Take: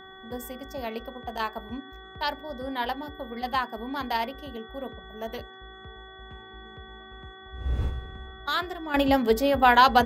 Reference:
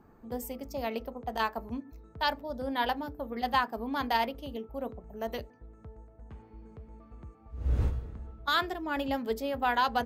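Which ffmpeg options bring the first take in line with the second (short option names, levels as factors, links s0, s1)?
-af "bandreject=f=380.4:t=h:w=4,bandreject=f=760.8:t=h:w=4,bandreject=f=1141.2:t=h:w=4,bandreject=f=1521.6:t=h:w=4,bandreject=f=1902:t=h:w=4,bandreject=f=3400:w=30,asetnsamples=n=441:p=0,asendcmd='8.94 volume volume -10dB',volume=1"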